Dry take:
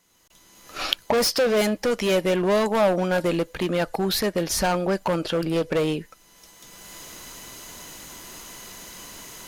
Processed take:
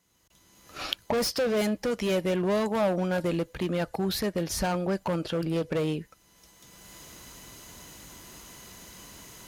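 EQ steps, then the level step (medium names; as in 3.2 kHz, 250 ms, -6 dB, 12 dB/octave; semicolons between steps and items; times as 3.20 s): high-pass 49 Hz; bass shelf 170 Hz +10.5 dB; -7.0 dB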